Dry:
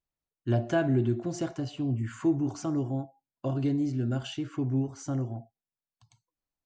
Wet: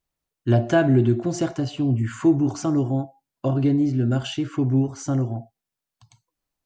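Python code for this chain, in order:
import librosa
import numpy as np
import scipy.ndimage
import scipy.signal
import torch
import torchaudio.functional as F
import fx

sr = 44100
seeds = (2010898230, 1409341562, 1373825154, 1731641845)

y = fx.high_shelf(x, sr, hz=fx.line((3.48, 3800.0), (4.1, 5700.0)), db=-8.5, at=(3.48, 4.1), fade=0.02)
y = F.gain(torch.from_numpy(y), 8.0).numpy()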